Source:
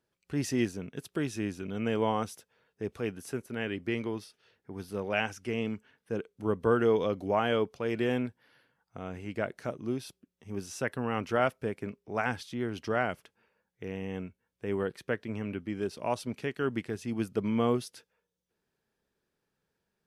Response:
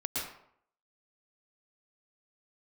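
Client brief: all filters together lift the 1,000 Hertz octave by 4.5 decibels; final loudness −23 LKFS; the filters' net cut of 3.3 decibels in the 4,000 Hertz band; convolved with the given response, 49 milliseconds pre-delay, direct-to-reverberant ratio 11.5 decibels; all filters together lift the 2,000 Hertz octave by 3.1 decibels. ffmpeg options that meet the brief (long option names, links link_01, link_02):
-filter_complex "[0:a]equalizer=frequency=1000:width_type=o:gain=5.5,equalizer=frequency=2000:width_type=o:gain=3.5,equalizer=frequency=4000:width_type=o:gain=-7.5,asplit=2[link_01][link_02];[1:a]atrim=start_sample=2205,adelay=49[link_03];[link_02][link_03]afir=irnorm=-1:irlink=0,volume=-16dB[link_04];[link_01][link_04]amix=inputs=2:normalize=0,volume=8dB"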